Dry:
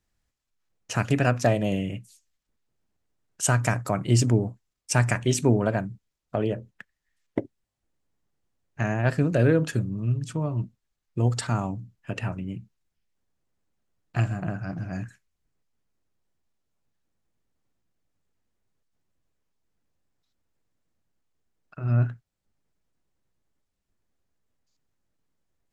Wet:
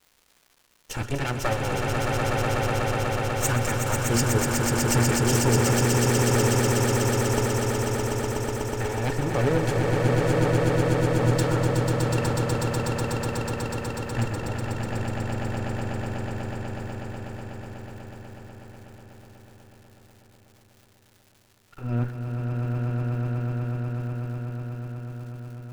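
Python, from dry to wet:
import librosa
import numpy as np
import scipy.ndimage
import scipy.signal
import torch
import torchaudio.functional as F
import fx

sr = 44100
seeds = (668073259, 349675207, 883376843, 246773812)

y = fx.lower_of_two(x, sr, delay_ms=2.2)
y = fx.echo_swell(y, sr, ms=123, loudest=8, wet_db=-4)
y = fx.dmg_crackle(y, sr, seeds[0], per_s=400.0, level_db=-46.0)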